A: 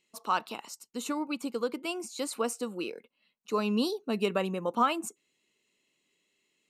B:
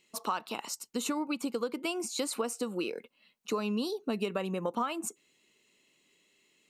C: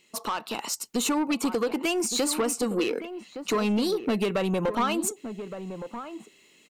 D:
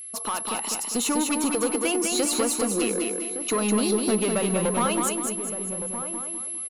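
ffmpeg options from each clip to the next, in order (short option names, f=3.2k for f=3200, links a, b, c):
-af "acompressor=threshold=-36dB:ratio=6,volume=6.5dB"
-filter_complex "[0:a]asoftclip=type=tanh:threshold=-30.5dB,asplit=2[a][b];[b]adelay=1166,volume=-10dB,highshelf=f=4k:g=-26.2[c];[a][c]amix=inputs=2:normalize=0,dynaudnorm=f=450:g=3:m=4dB,volume=6.5dB"
-af "aeval=exprs='val(0)+0.0158*sin(2*PI*11000*n/s)':c=same,aecho=1:1:201|402|603|804|1005:0.631|0.252|0.101|0.0404|0.0162"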